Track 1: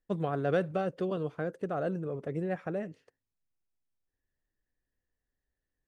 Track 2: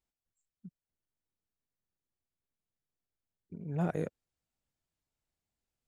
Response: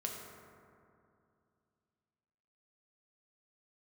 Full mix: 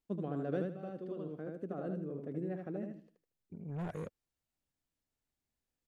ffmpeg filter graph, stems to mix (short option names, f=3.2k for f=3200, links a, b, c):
-filter_complex "[0:a]equalizer=f=260:w=0.91:g=14,volume=-15dB,asplit=2[a][b];[b]volume=-4.5dB[c];[1:a]asoftclip=type=tanh:threshold=-33.5dB,volume=-2dB,asplit=2[d][e];[e]apad=whole_len=259275[f];[a][f]sidechaincompress=threshold=-57dB:ratio=10:attack=21:release=1360[g];[c]aecho=0:1:77|154|231|308:1|0.27|0.0729|0.0197[h];[g][d][h]amix=inputs=3:normalize=0"